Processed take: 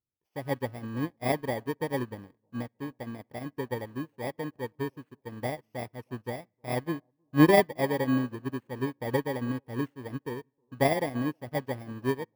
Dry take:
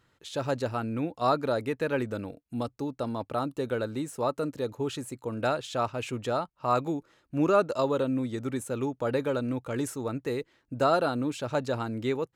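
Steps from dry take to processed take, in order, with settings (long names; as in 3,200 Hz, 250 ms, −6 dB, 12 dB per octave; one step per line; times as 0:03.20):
samples in bit-reversed order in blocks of 32 samples
bass and treble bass +3 dB, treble −12 dB
in parallel at −6 dB: centre clipping without the shift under −38 dBFS
on the sum: high-shelf EQ 3,600 Hz −6 dB
bucket-brigade delay 315 ms, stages 2,048, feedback 54%, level −18.5 dB
on a send at −20 dB: convolution reverb RT60 1.0 s, pre-delay 45 ms
on the sum: expander for the loud parts 2.5 to 1, over −40 dBFS
level +4.5 dB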